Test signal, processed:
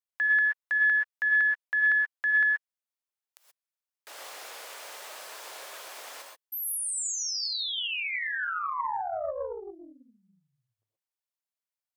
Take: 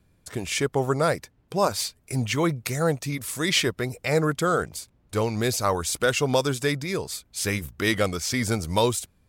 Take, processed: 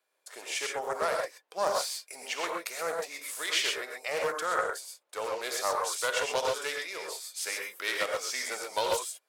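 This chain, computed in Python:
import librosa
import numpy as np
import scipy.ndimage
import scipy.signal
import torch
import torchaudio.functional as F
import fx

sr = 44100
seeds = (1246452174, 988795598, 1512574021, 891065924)

y = scipy.signal.sosfilt(scipy.signal.butter(4, 530.0, 'highpass', fs=sr, output='sos'), x)
y = fx.rev_gated(y, sr, seeds[0], gate_ms=150, shape='rising', drr_db=0.5)
y = fx.doppler_dist(y, sr, depth_ms=0.18)
y = y * librosa.db_to_amplitude(-6.5)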